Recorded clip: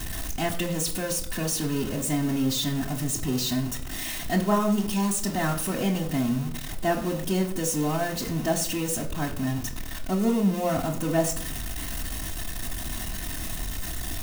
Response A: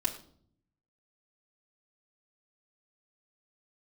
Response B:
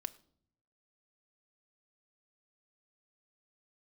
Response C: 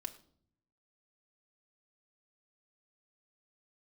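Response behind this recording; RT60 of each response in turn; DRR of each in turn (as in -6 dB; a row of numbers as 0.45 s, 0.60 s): A; 0.55 s, 0.60 s, 0.60 s; -4.5 dB, 8.5 dB, 2.5 dB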